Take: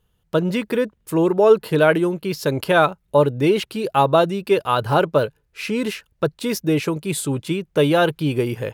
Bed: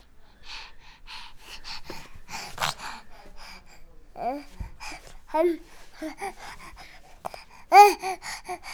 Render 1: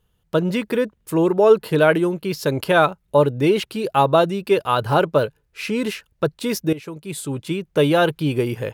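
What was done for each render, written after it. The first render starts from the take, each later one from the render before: 6.73–7.7 fade in, from -16.5 dB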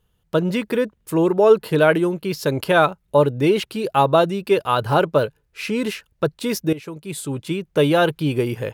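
nothing audible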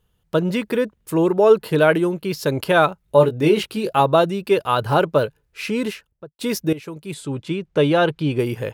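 3.04–4 doubler 19 ms -6 dB; 5.78–6.39 studio fade out; 7.14–8.39 air absorption 64 m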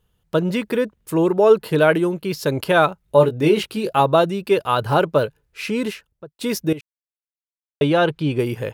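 6.81–7.81 mute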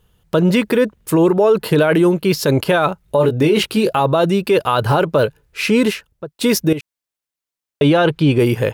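in parallel at +2 dB: negative-ratio compressor -19 dBFS, ratio -1; on the sum: limiter -5.5 dBFS, peak gain reduction 8.5 dB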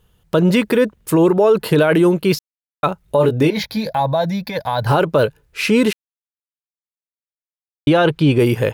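2.39–2.83 mute; 3.5–4.87 fixed phaser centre 1900 Hz, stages 8; 5.93–7.87 mute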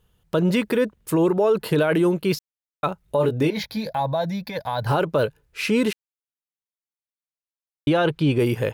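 gain -6 dB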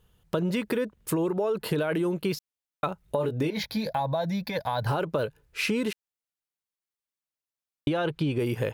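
compressor, threshold -24 dBFS, peak gain reduction 9 dB

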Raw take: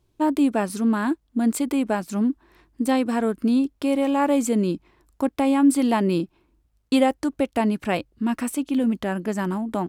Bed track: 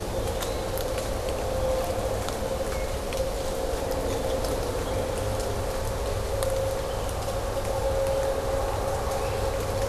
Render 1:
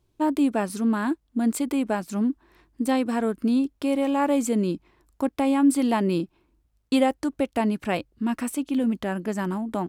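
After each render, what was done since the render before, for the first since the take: gain -2 dB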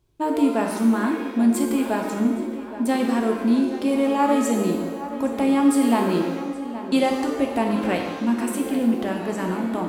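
on a send: darkening echo 0.821 s, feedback 63%, low-pass 3100 Hz, level -13 dB; on the sum: shimmer reverb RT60 1.1 s, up +7 st, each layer -8 dB, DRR 1.5 dB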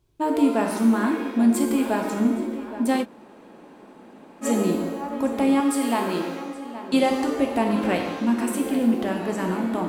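3.03–4.44 room tone, crossfade 0.06 s; 5.6–6.94 low shelf 390 Hz -8.5 dB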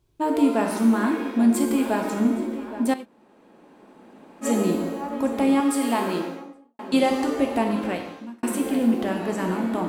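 2.94–4.53 fade in, from -14 dB; 6.08–6.79 studio fade out; 7.56–8.43 fade out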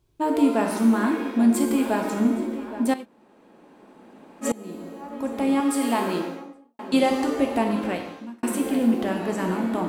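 4.52–5.83 fade in, from -23.5 dB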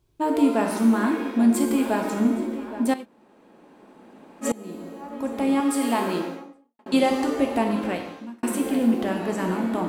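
6.34–6.86 fade out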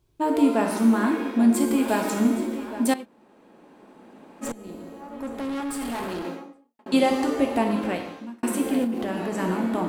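1.88–2.94 high shelf 2900 Hz +7.5 dB; 4.44–6.25 tube stage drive 27 dB, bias 0.55; 8.84–9.35 compressor, threshold -23 dBFS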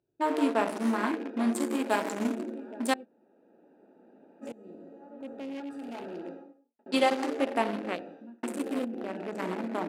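Wiener smoothing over 41 samples; weighting filter A

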